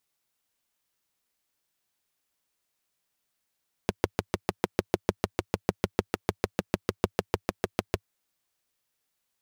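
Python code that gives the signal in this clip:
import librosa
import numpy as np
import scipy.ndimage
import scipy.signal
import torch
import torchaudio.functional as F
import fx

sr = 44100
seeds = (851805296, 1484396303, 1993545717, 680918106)

y = fx.engine_single(sr, seeds[0], length_s=4.15, rpm=800, resonances_hz=(100.0, 190.0, 360.0))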